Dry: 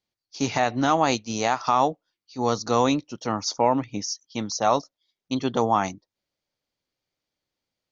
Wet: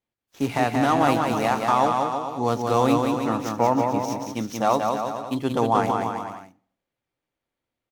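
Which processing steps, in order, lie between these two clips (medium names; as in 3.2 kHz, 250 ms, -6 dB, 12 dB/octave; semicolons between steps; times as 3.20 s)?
median filter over 9 samples; bouncing-ball echo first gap 180 ms, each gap 0.8×, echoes 5; on a send at -15.5 dB: reverberation RT60 0.55 s, pre-delay 3 ms; on the sum: WMA 128 kbps 44.1 kHz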